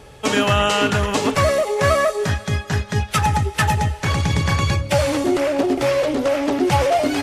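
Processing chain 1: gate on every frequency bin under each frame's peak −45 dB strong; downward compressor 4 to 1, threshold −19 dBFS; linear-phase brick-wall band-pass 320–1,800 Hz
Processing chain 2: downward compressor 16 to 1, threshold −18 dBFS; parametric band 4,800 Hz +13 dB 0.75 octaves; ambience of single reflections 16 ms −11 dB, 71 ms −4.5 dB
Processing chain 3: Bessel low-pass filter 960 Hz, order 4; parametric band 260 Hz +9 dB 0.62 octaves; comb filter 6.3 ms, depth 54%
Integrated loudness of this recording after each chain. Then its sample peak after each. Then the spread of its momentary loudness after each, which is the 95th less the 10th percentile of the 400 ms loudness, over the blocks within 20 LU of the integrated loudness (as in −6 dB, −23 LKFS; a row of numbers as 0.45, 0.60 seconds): −25.5, −20.0, −18.0 LKFS; −12.0, −5.0, −2.0 dBFS; 8, 3, 7 LU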